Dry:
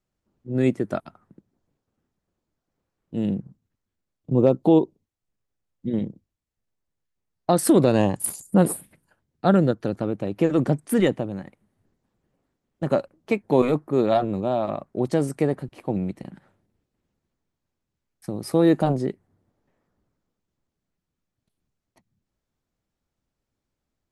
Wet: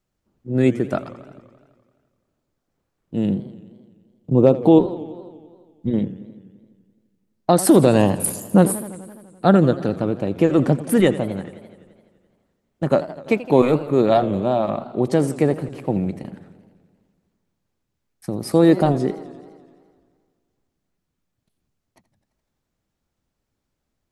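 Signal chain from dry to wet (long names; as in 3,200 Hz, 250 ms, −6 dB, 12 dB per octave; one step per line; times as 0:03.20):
0:04.78–0:05.91: sub-octave generator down 1 octave, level −6 dB
feedback echo with a swinging delay time 85 ms, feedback 72%, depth 177 cents, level −16 dB
level +4 dB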